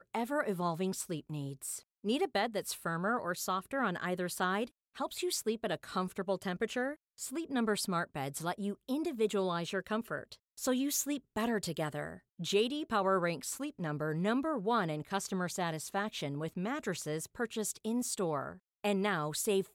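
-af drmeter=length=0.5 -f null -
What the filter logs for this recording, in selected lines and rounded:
Channel 1: DR: 9.6
Overall DR: 9.6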